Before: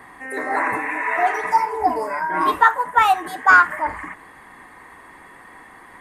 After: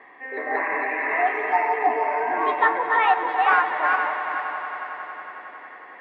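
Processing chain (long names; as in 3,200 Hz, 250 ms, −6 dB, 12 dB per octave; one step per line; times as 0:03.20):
feedback delay that plays each chunk backwards 233 ms, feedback 53%, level −3 dB
loudspeaker in its box 430–2,800 Hz, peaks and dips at 450 Hz +3 dB, 940 Hz −6 dB, 1,400 Hz −10 dB
echo that builds up and dies away 91 ms, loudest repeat 5, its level −16 dB
level −1 dB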